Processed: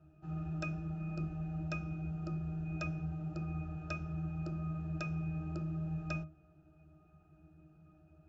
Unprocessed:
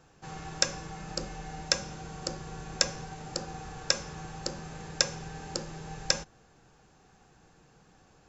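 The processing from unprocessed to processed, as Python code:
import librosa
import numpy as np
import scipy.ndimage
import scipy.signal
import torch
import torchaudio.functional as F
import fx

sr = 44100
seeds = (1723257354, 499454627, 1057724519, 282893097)

y = fx.octave_resonator(x, sr, note='D#', decay_s=0.23)
y = y * librosa.db_to_amplitude(10.0)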